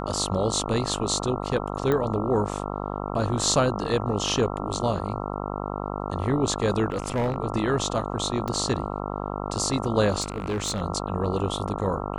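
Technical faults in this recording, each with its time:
buzz 50 Hz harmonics 27 -31 dBFS
1.92 pop -13 dBFS
6.9–7.36 clipped -21 dBFS
8.48 pop -16 dBFS
10.2–10.82 clipped -23 dBFS

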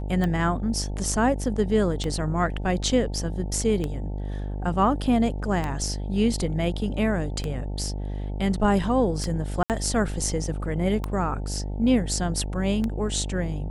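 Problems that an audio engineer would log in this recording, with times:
buzz 50 Hz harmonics 18 -30 dBFS
tick 33 1/3 rpm -15 dBFS
9.63–9.7 gap 68 ms

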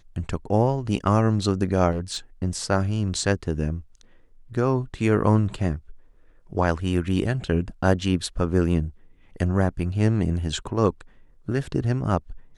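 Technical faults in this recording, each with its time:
1.91–2.17 clipped -23 dBFS

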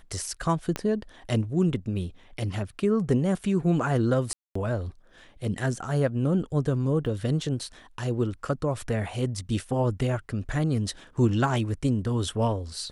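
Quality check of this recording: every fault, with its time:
0.76 pop -14 dBFS
4.33–4.55 gap 0.224 s
7.06 gap 3 ms

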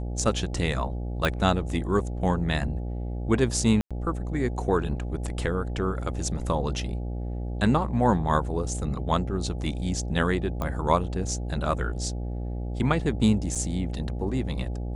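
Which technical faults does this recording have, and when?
buzz 60 Hz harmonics 14 -31 dBFS
1.25 pop -11 dBFS
3.81–3.91 gap 96 ms
10.62 pop -17 dBFS
13.55–13.56 gap 6.5 ms

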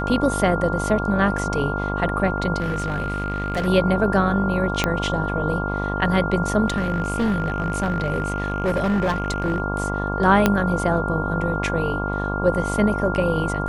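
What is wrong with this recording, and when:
buzz 50 Hz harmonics 23 -26 dBFS
tone 1400 Hz -27 dBFS
2.6–3.68 clipped -19.5 dBFS
4.84 pop -5 dBFS
6.68–9.6 clipped -17 dBFS
10.46 pop -2 dBFS

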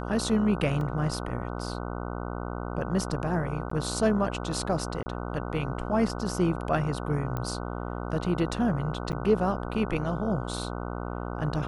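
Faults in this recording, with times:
buzz 60 Hz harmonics 25 -34 dBFS
0.81 gap 2.1 ms
3.7–3.71 gap 14 ms
5.03–5.06 gap 30 ms
7.37 pop -19 dBFS
9.12–9.13 gap 8.7 ms

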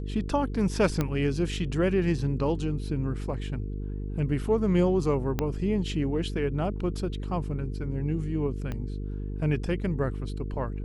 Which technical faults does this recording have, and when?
buzz 50 Hz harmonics 9 -33 dBFS
1.01 pop -13 dBFS
5.39 pop -13 dBFS
8.72 pop -21 dBFS

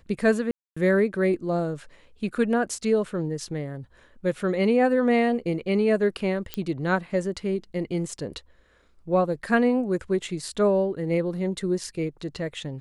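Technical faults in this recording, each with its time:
0.51–0.77 gap 0.255 s
6.54 pop -13 dBFS

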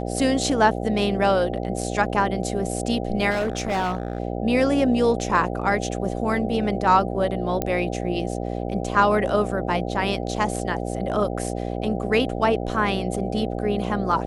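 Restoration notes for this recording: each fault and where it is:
buzz 60 Hz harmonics 13 -28 dBFS
3.3–4.2 clipped -20 dBFS
7.62 pop -9 dBFS

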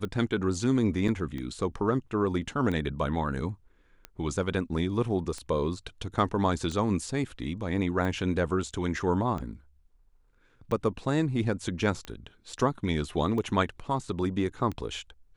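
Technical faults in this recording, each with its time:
tick 45 rpm -23 dBFS
1.08 gap 3.6 ms
12.53 gap 3.3 ms

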